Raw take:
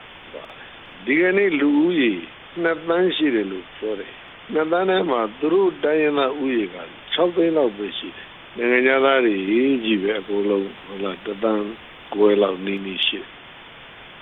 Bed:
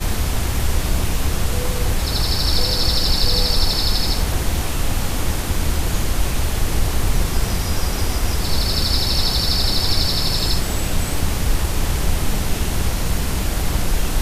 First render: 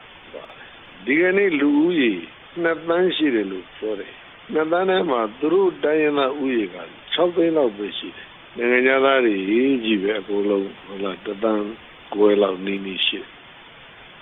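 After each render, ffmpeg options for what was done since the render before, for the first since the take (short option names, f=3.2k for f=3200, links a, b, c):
-af "afftdn=nr=6:nf=-42"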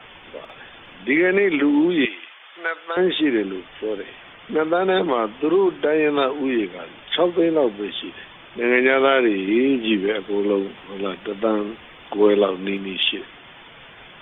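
-filter_complex "[0:a]asettb=1/sr,asplit=3[a][b][c];[a]atrim=end=2.054[d];[b]atrim=start=2.05:end=2.97,asetpts=PTS-STARTPTS,afade=t=in:d=0.004:c=qsin,afade=t=out:st=0.916:d=0.004:c=qsin,highpass=920[e];[c]atrim=start=2.966[f];[d][e]acrossfade=d=0.004:c1=hsin:c2=qsin[g];[g][f]acrossfade=d=0.004:c1=qsin:c2=hsin"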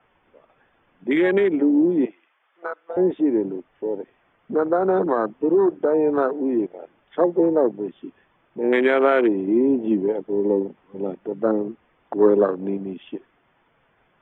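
-af "lowpass=1.6k,afwtdn=0.0631"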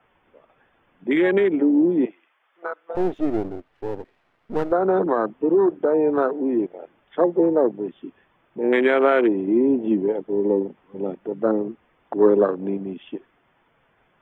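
-filter_complex "[0:a]asettb=1/sr,asplit=3[a][b][c];[a]atrim=end=2.954[d];[b]atrim=start=2.95:end=4.72,asetpts=PTS-STARTPTS,afade=t=in:d=0.004:c=qsin,afade=t=out:st=1.766:d=0.004:c=qsin,aeval=exprs='if(lt(val(0),0),0.251*val(0),val(0))':c=same[e];[c]atrim=start=4.716[f];[d][e]acrossfade=d=0.004:c1=hsin:c2=qsin[g];[g][f]acrossfade=d=0.004:c1=qsin:c2=hsin"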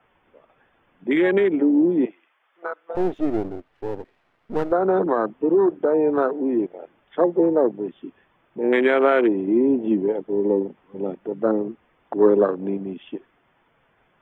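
-af anull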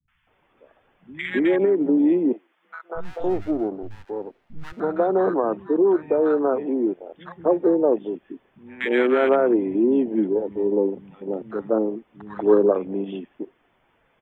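-filter_complex "[0:a]acrossover=split=160|1300[a][b][c];[c]adelay=80[d];[b]adelay=270[e];[a][e][d]amix=inputs=3:normalize=0"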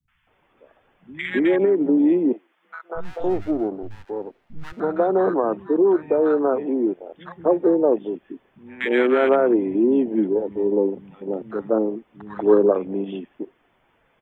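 -af "volume=1dB"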